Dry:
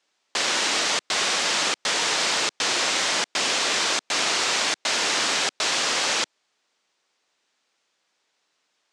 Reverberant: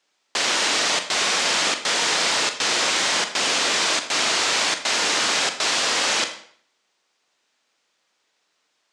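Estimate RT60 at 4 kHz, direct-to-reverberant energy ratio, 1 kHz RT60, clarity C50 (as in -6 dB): 0.50 s, 7.0 dB, 0.55 s, 10.5 dB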